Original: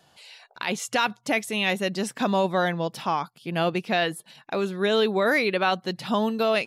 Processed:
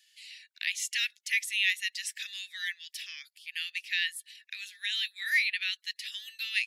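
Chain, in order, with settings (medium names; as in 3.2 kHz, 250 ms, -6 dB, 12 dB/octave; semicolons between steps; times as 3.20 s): Chebyshev high-pass 1.8 kHz, order 6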